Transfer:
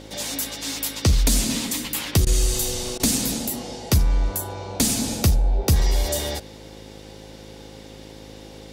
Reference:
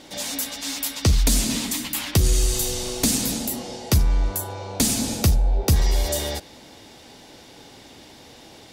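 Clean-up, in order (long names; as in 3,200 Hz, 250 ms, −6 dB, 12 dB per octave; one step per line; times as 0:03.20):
hum removal 52.9 Hz, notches 9
notch filter 530 Hz, Q 30
repair the gap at 0:02.25/0:02.98, 16 ms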